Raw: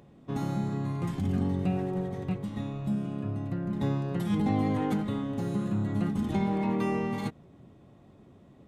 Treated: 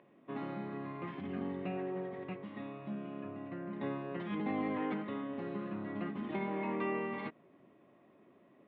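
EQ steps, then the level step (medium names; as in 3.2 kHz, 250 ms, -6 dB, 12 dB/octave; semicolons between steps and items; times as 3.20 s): distance through air 91 m; cabinet simulation 420–2700 Hz, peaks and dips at 480 Hz -6 dB, 810 Hz -9 dB, 1.4 kHz -5 dB; +1.5 dB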